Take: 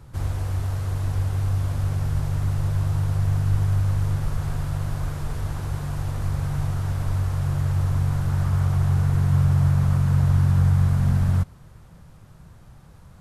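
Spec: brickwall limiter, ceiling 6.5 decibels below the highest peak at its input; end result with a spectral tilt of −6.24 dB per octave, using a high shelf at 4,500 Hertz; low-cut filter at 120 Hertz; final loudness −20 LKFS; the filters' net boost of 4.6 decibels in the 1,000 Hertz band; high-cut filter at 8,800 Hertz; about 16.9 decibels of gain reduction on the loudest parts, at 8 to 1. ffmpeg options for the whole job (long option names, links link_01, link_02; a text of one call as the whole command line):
ffmpeg -i in.wav -af "highpass=120,lowpass=8800,equalizer=frequency=1000:width_type=o:gain=5.5,highshelf=frequency=4500:gain=5.5,acompressor=threshold=-37dB:ratio=8,volume=22dB,alimiter=limit=-11dB:level=0:latency=1" out.wav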